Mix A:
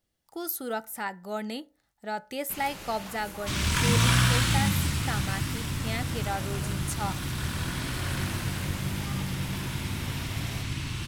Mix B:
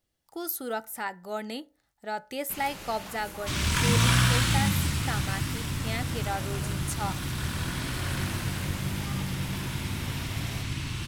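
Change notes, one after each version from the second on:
speech: add bell 200 Hz -6.5 dB 0.2 oct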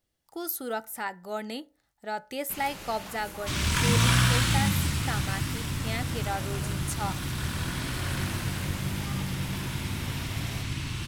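none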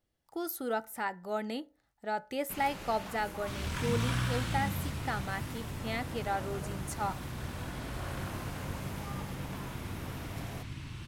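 second sound -9.0 dB; master: add high shelf 2900 Hz -7.5 dB

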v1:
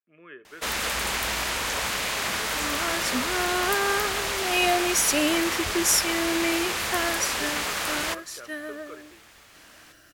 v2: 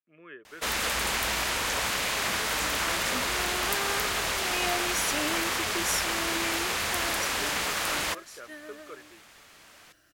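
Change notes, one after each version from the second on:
second sound -9.0 dB; reverb: off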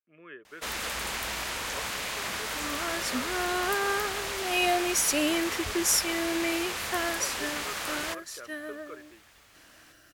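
first sound -5.0 dB; second sound +6.5 dB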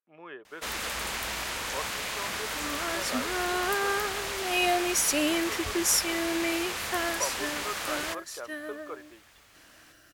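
speech: remove fixed phaser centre 2000 Hz, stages 4

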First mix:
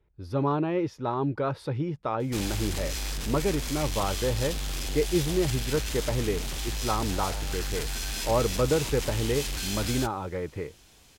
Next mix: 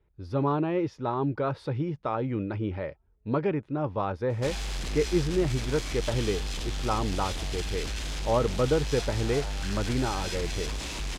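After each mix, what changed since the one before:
background: entry +2.10 s; master: add air absorption 57 m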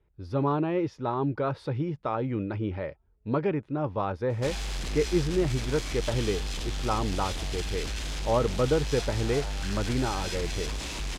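none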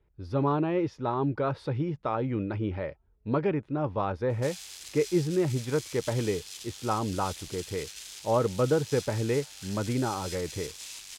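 background: add differentiator

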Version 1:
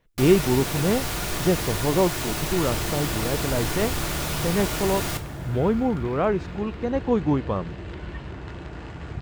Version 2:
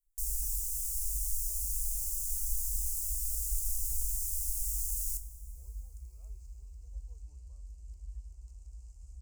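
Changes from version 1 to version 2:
speech -10.5 dB; master: add inverse Chebyshev band-stop 100–3800 Hz, stop band 40 dB

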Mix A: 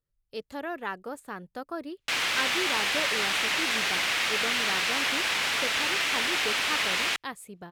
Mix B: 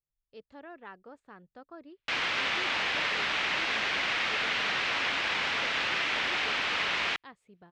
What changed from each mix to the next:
speech -11.5 dB; master: add air absorption 170 m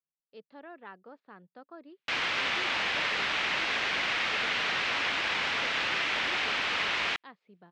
speech: add elliptic band-pass 170–4600 Hz

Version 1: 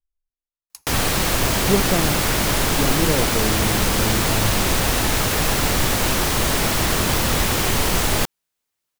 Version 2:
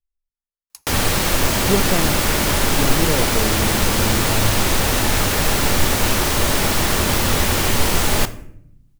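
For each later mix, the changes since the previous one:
background: send on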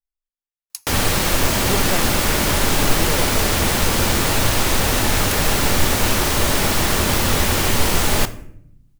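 speech: add tilt shelf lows -9 dB

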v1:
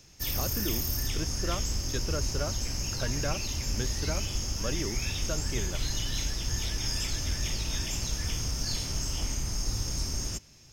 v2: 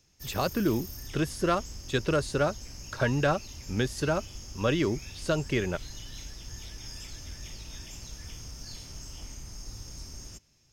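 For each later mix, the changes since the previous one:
speech +9.0 dB; background -11.0 dB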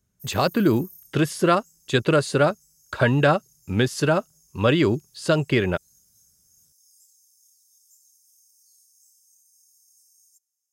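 speech +7.5 dB; background: add inverse Chebyshev high-pass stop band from 2100 Hz, stop band 70 dB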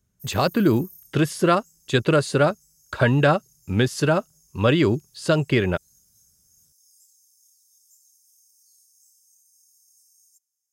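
master: add low shelf 140 Hz +3 dB

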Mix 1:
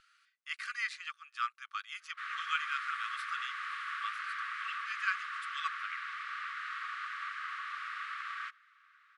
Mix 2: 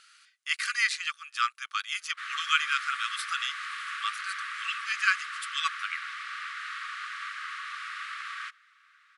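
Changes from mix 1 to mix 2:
speech +5.5 dB; master: add tilt +4 dB/oct

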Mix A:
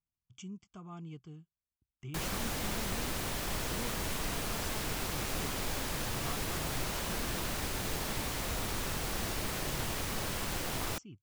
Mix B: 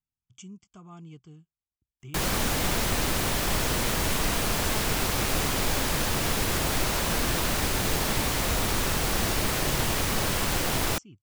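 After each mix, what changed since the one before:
speech: remove air absorption 66 m; background +9.5 dB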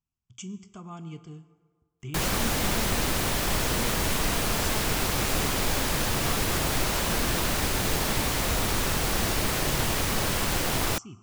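speech +5.0 dB; reverb: on, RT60 1.6 s

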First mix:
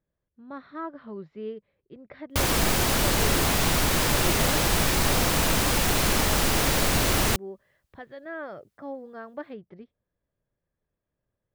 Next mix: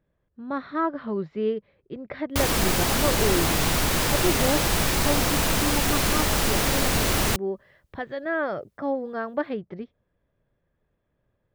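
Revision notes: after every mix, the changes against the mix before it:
speech +10.0 dB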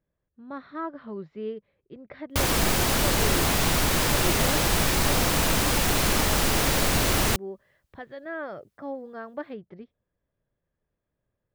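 speech -8.0 dB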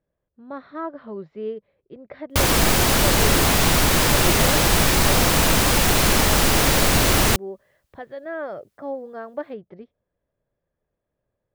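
speech: add bell 590 Hz +6 dB 1.3 oct; background +5.5 dB

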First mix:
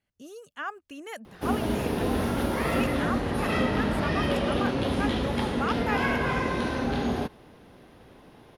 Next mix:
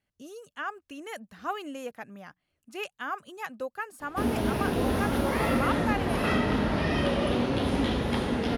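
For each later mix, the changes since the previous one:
background: entry +2.75 s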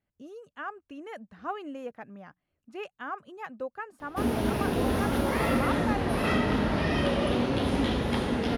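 speech: add LPF 1300 Hz 6 dB/oct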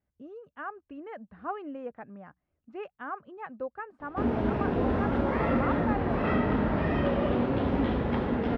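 speech: add bell 65 Hz +10 dB 0.26 oct; master: add LPF 1800 Hz 12 dB/oct

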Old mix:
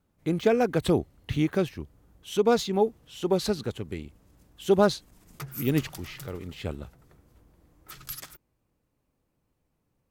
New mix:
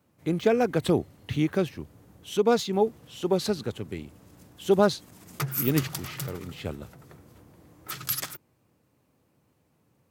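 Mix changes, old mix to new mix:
background +9.0 dB; master: add HPF 84 Hz 24 dB/oct

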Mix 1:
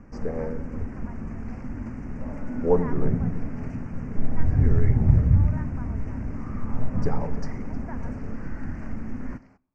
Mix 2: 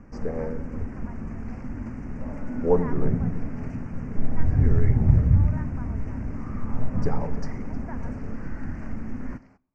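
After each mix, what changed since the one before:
none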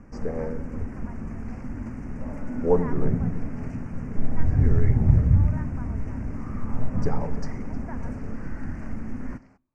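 second sound: send off; master: remove LPF 6900 Hz 12 dB/oct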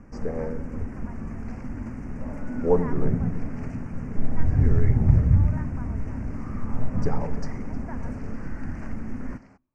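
second sound +4.0 dB

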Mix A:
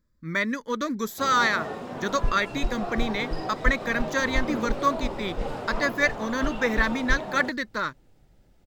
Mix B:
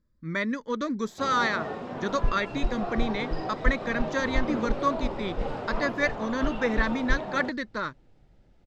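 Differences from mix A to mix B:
speech: add bell 1800 Hz -3.5 dB 2 oct; master: add air absorption 100 m

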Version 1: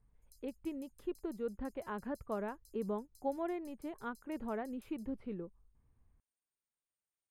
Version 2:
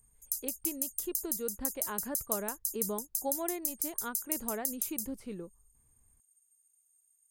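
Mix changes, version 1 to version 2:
background: remove LPF 12000 Hz 12 dB/oct; master: remove air absorption 460 m

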